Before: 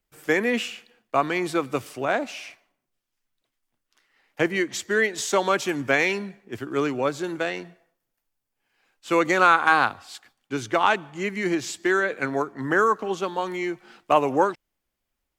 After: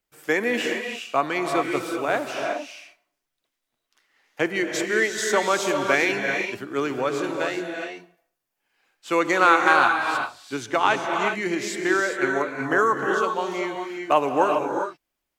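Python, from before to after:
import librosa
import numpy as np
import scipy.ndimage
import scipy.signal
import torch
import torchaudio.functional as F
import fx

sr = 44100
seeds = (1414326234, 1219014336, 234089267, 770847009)

y = fx.low_shelf(x, sr, hz=150.0, db=-10.0)
y = fx.rev_gated(y, sr, seeds[0], gate_ms=430, shape='rising', drr_db=3.0)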